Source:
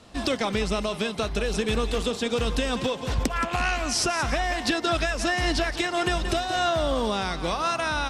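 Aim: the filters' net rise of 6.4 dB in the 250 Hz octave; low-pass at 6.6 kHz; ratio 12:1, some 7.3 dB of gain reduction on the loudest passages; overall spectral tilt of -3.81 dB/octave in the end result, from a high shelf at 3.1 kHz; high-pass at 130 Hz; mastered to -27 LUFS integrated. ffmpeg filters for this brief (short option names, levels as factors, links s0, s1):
-af "highpass=130,lowpass=6600,equalizer=f=250:t=o:g=8.5,highshelf=f=3100:g=-7,acompressor=threshold=0.0708:ratio=12,volume=1.19"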